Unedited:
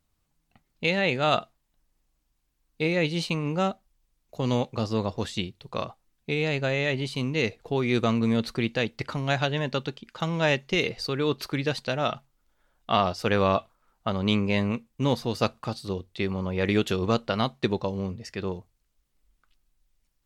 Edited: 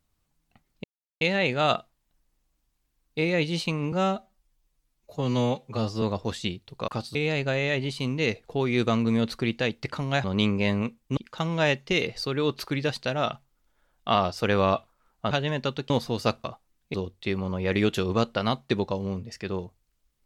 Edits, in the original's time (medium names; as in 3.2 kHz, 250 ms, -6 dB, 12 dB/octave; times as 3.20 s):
0.84 s: insert silence 0.37 s
3.55–4.95 s: stretch 1.5×
5.81–6.31 s: swap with 15.60–15.87 s
9.40–9.99 s: swap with 14.13–15.06 s